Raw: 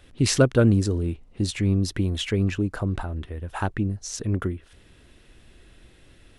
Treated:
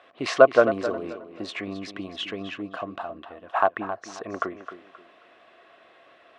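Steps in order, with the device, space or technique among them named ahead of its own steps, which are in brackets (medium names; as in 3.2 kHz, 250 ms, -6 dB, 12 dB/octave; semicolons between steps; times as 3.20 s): tin-can telephone (band-pass 540–2600 Hz; small resonant body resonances 680/1100 Hz, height 14 dB, ringing for 30 ms); time-frequency box 1.64–3.47 s, 340–2500 Hz -7 dB; tape echo 266 ms, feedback 29%, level -10.5 dB, low-pass 5.6 kHz; trim +3.5 dB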